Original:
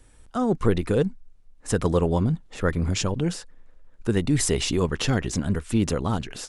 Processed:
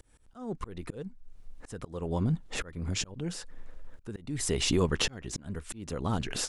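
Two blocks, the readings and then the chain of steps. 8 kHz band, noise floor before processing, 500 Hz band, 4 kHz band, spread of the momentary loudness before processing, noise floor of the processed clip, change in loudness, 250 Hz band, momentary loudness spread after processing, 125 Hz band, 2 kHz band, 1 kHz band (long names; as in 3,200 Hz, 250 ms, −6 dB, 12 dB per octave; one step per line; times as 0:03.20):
−4.5 dB, −53 dBFS, −10.5 dB, −2.5 dB, 6 LU, −59 dBFS, −8.0 dB, −10.0 dB, 17 LU, −9.0 dB, −6.0 dB, −9.0 dB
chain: downward compressor 2 to 1, threshold −37 dBFS, peak gain reduction 12.5 dB
volume swells 537 ms
level +7 dB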